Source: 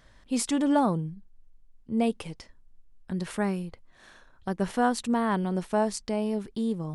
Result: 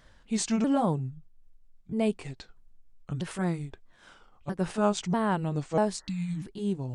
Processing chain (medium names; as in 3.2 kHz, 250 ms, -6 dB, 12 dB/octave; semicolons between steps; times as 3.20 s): sawtooth pitch modulation -5 st, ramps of 642 ms; spectral replace 6.01–6.43 s, 320–2000 Hz before